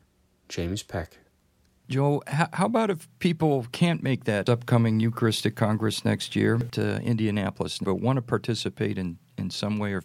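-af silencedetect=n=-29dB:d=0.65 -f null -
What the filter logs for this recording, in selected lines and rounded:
silence_start: 1.03
silence_end: 1.91 | silence_duration: 0.88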